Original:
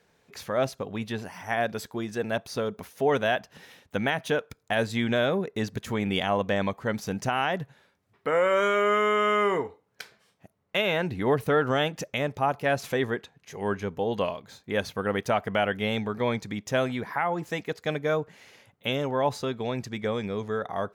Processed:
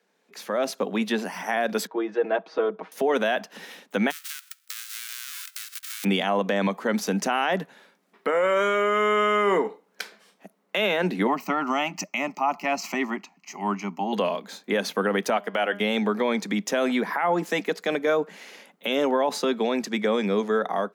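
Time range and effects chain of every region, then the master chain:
1.87–2.92 s: high-pass 380 Hz + tape spacing loss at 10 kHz 44 dB + comb 6.3 ms, depth 95%
4.10–6.03 s: formants flattened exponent 0.1 + elliptic high-pass 1.3 kHz, stop band 60 dB + compression 12:1, threshold -40 dBFS
11.27–14.13 s: high-pass 150 Hz + peaking EQ 470 Hz -4.5 dB 0.21 oct + static phaser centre 2.4 kHz, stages 8
15.36–15.80 s: bass shelf 170 Hz -12 dB + de-hum 203.4 Hz, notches 31 + upward expansion, over -40 dBFS
whole clip: steep high-pass 180 Hz 72 dB/octave; peak limiter -22 dBFS; level rider gain up to 13 dB; trim -5 dB

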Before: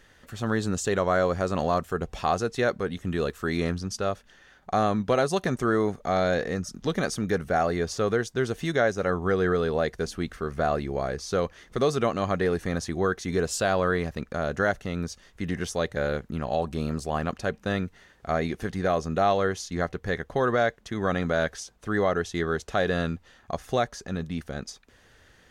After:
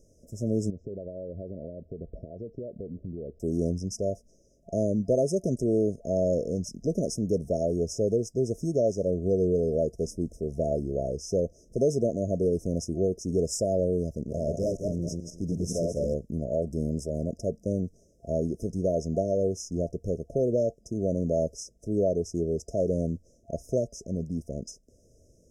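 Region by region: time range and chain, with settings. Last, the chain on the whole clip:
0.70–3.40 s: low-pass 1.8 kHz 24 dB/octave + compression 16:1, threshold -32 dBFS
14.14–16.14 s: backward echo that repeats 106 ms, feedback 42%, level -3 dB + hard clipper -22 dBFS
whole clip: Bessel low-pass 11 kHz, order 2; FFT band-reject 680–5000 Hz

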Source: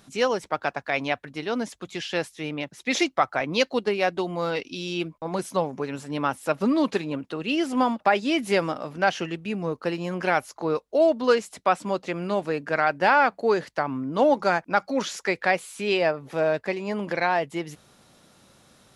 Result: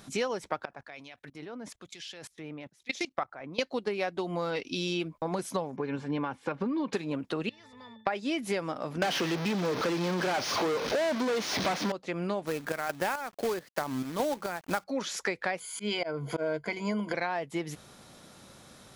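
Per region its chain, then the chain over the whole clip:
0.65–3.59 s: level held to a coarse grid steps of 22 dB + harmonic tremolo 1.1 Hz, crossover 2.3 kHz
5.76–6.93 s: low-pass 3 kHz + comb of notches 650 Hz + compression, threshold -23 dBFS
7.49–8.07 s: peaking EQ 330 Hz -14 dB 1.8 oct + pitch-class resonator A, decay 0.3 s + spectrum-flattening compressor 2:1
9.02–11.92 s: one-bit delta coder 32 kbps, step -33 dBFS + waveshaping leveller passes 5 + high-pass 150 Hz
12.46–14.84 s: square tremolo 2.3 Hz, depth 65%, duty 60% + companded quantiser 4-bit
15.60–17.14 s: rippled EQ curve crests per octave 1.8, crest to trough 15 dB + slow attack 192 ms
whole clip: band-stop 2.8 kHz, Q 24; compression 6:1, threshold -32 dBFS; trim +3.5 dB

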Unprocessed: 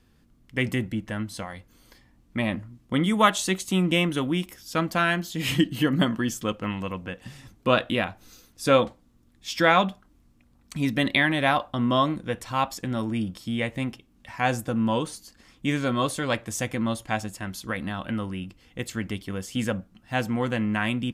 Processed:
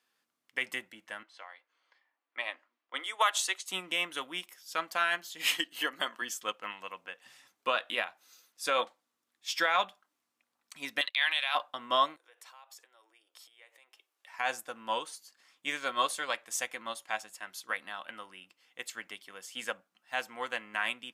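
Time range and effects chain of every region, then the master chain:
1.23–3.66 s: elliptic high-pass 260 Hz + level-controlled noise filter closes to 2.4 kHz, open at -20.5 dBFS + bass shelf 360 Hz -11.5 dB
5.47–6.22 s: high-pass 130 Hz + tone controls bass -8 dB, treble +1 dB
11.01–11.55 s: high-pass 890 Hz + gate -35 dBFS, range -22 dB + high-order bell 3.3 kHz +8.5 dB 1.1 oct
12.16–14.34 s: compression 16:1, threshold -40 dBFS + steep high-pass 340 Hz 48 dB/octave + treble shelf 11 kHz +4 dB
whole clip: high-pass 820 Hz 12 dB/octave; peak limiter -16.5 dBFS; upward expansion 1.5:1, over -42 dBFS; trim +2 dB

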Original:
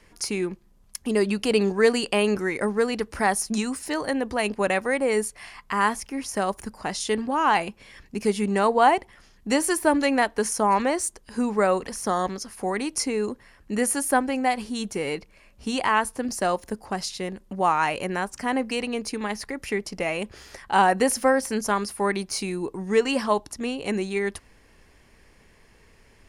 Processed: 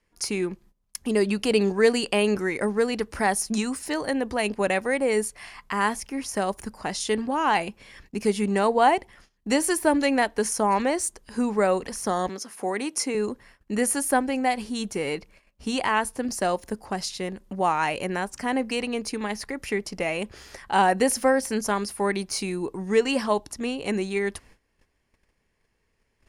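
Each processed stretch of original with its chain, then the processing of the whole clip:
12.29–13.15 s: high-pass 220 Hz + peaking EQ 4.6 kHz -4 dB 0.24 oct
whole clip: gate -51 dBFS, range -17 dB; dynamic bell 1.2 kHz, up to -4 dB, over -35 dBFS, Q 2.1

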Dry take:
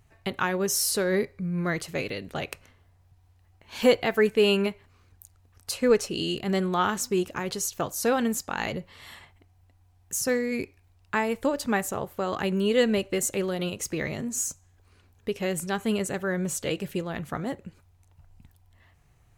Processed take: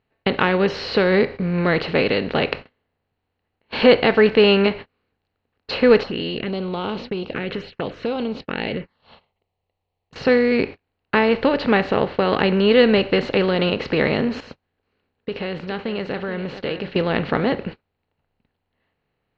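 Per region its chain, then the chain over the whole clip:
6.03–10.16 s: touch-sensitive phaser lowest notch 250 Hz, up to 1.8 kHz, full sweep at -23.5 dBFS + compression 3:1, threshold -40 dBFS
14.40–16.96 s: compression 3:1, threshold -43 dBFS + delay 430 ms -16.5 dB
whole clip: spectral levelling over time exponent 0.6; gate -34 dBFS, range -34 dB; Chebyshev low-pass 4.3 kHz, order 5; trim +5.5 dB

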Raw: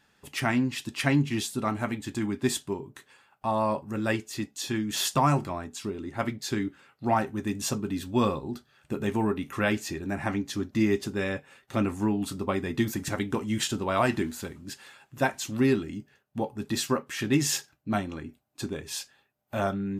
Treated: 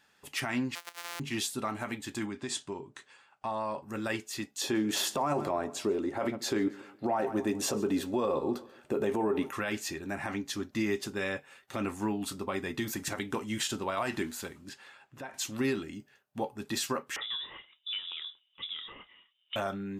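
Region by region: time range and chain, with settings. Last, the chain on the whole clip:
0.75–1.20 s: sorted samples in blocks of 256 samples + high-pass 980 Hz
2.25–3.83 s: low-pass 8.6 kHz 24 dB/octave + compression 5:1, threshold -28 dBFS
4.61–9.51 s: peaking EQ 480 Hz +13.5 dB 2.1 oct + feedback delay 138 ms, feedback 41%, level -23 dB
14.69–15.34 s: low-pass 2.5 kHz 6 dB/octave + compression 12:1, threshold -34 dBFS
17.16–19.56 s: peaking EQ 750 Hz +13.5 dB 0.97 oct + compression 4:1, threshold -36 dBFS + frequency inversion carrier 3.7 kHz
whole clip: bass shelf 310 Hz -10 dB; peak limiter -21 dBFS

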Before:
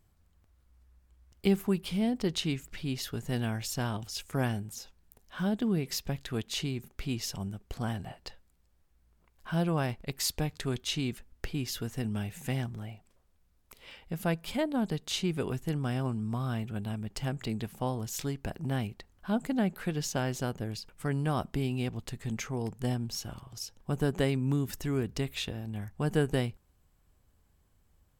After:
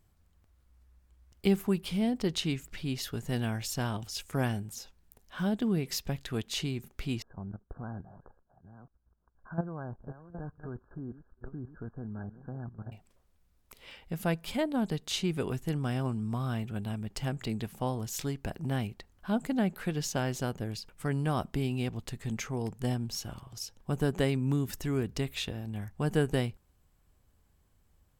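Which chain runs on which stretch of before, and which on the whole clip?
7.22–12.92 s: chunks repeated in reverse 553 ms, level -12 dB + brick-wall FIR low-pass 1.7 kHz + level held to a coarse grid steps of 13 dB
whole clip: none

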